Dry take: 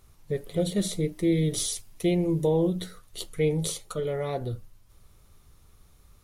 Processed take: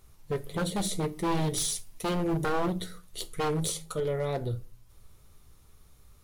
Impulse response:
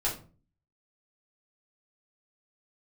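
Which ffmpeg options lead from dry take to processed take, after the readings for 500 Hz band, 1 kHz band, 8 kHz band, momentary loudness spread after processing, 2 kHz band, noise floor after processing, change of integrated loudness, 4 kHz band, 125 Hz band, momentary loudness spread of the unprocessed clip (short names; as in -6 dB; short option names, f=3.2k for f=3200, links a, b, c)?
-4.0 dB, +7.5 dB, 0.0 dB, 8 LU, +2.5 dB, -57 dBFS, -3.5 dB, -0.5 dB, -3.5 dB, 11 LU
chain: -filter_complex "[0:a]aeval=exprs='0.211*(cos(1*acos(clip(val(0)/0.211,-1,1)))-cos(1*PI/2))+0.0119*(cos(3*acos(clip(val(0)/0.211,-1,1)))-cos(3*PI/2))+0.00596*(cos(6*acos(clip(val(0)/0.211,-1,1)))-cos(6*PI/2))+0.00119*(cos(8*acos(clip(val(0)/0.211,-1,1)))-cos(8*PI/2))':c=same,aeval=exprs='0.0668*(abs(mod(val(0)/0.0668+3,4)-2)-1)':c=same,asplit=2[a][b];[1:a]atrim=start_sample=2205,highshelf=f=5.3k:g=11.5[c];[b][c]afir=irnorm=-1:irlink=0,volume=-21dB[d];[a][d]amix=inputs=2:normalize=0"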